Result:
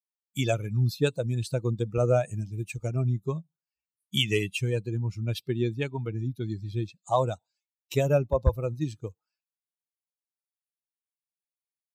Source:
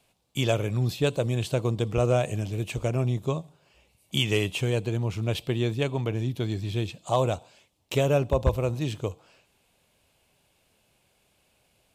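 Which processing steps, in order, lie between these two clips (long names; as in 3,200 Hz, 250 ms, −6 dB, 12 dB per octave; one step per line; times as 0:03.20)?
spectral dynamics exaggerated over time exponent 2
level +3 dB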